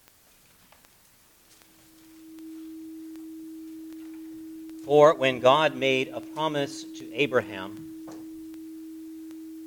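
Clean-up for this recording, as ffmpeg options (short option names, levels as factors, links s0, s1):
-af "adeclick=t=4,bandreject=f=320:w=30"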